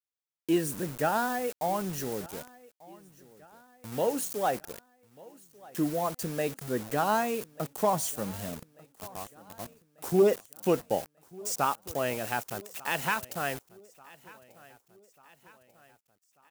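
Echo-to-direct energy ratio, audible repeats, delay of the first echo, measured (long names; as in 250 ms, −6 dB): −21.0 dB, 3, 1,191 ms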